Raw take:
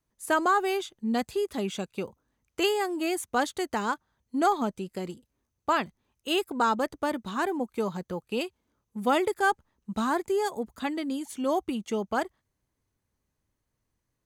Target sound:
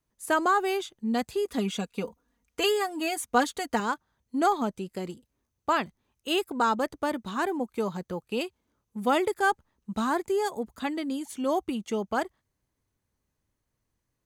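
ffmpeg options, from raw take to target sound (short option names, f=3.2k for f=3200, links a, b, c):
-filter_complex "[0:a]asettb=1/sr,asplit=3[a][b][c];[a]atrim=end=1.454[d];[b]atrim=start=1.45:end=3.8,asetpts=PTS-STARTPTS,afade=t=in:d=0.004:c=qsin,afade=t=out:st=2.346:d=0.004:c=qsin,aecho=1:1:4.2:0.74,atrim=end_sample=103635[e];[c]atrim=start=3.796[f];[d][e]acrossfade=d=0.004:c1=hsin:c2=qsin[g];[g][f]acrossfade=d=0.004:c1=qsin:c2=hsin"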